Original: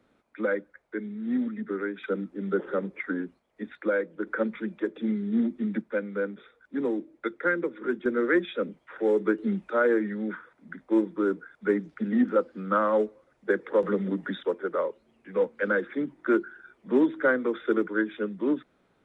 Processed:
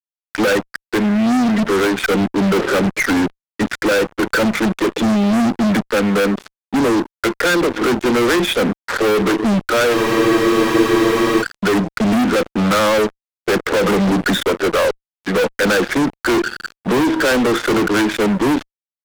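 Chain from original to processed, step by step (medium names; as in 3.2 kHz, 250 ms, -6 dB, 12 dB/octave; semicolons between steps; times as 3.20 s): in parallel at -2 dB: compression 8:1, threshold -31 dBFS, peak gain reduction 14 dB; on the sum: fuzz box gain 38 dB, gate -42 dBFS; spectral freeze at 9.95 s, 1.46 s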